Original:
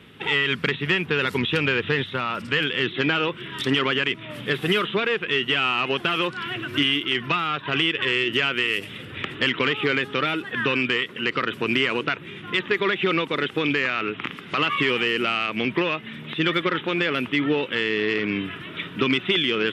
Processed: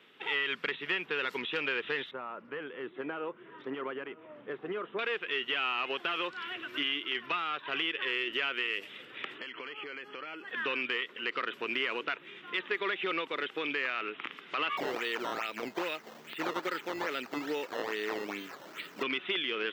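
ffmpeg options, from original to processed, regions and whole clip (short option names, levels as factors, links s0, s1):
-filter_complex "[0:a]asettb=1/sr,asplit=3[s0][s1][s2];[s0]atrim=end=2.114[s3];[s1]atrim=start=2.11:end=4.99,asetpts=PTS-STARTPTS,afade=t=in:d=0.004:c=qsin,afade=t=out:st=2.876:d=0.004:c=qsin,lowpass=1000,aecho=1:1:960:0.0944,atrim=end_sample=127008[s4];[s2]atrim=start=4.986[s5];[s3][s4]acrossfade=d=0.004:c1=hsin:c2=qsin[s6];[s6][s5]acrossfade=d=0.004:c1=qsin:c2=hsin,asettb=1/sr,asplit=3[s7][s8][s9];[s7]atrim=end=9.384[s10];[s8]atrim=start=9.38:end=10.48,asetpts=PTS-STARTPTS,afade=t=in:d=0.004:c=qsin,afade=t=out:st=1.096:d=0.004:c=qsin,acompressor=threshold=0.0447:ratio=10:attack=3.2:release=140:knee=1:detection=peak,asuperstop=centerf=3700:order=20:qfactor=5.9,highshelf=f=4400:g=-4.5[s11];[s9]atrim=start=10.476[s12];[s10][s11]acrossfade=d=0.004:c1=hsin:c2=qsin[s13];[s13][s12]acrossfade=d=0.004:c1=qsin:c2=hsin,asettb=1/sr,asplit=3[s14][s15][s16];[s14]atrim=end=14.774[s17];[s15]atrim=start=14.77:end=19.03,asetpts=PTS-STARTPTS,afade=t=in:d=0.004:c=qsin,afade=t=out:st=4.256:d=0.004:c=qsin,bandreject=f=1100:w=10,acrusher=samples=13:mix=1:aa=0.000001:lfo=1:lforange=13:lforate=2.4[s18];[s16]atrim=start=19.026[s19];[s17][s18]acrossfade=d=0.004:c1=hsin:c2=qsin[s20];[s20][s19]acrossfade=d=0.004:c1=qsin:c2=hsin,highpass=410,acrossover=split=3900[s21][s22];[s22]acompressor=threshold=0.01:ratio=4:attack=1:release=60[s23];[s21][s23]amix=inputs=2:normalize=0,equalizer=f=9800:w=2.7:g=-14,volume=0.376"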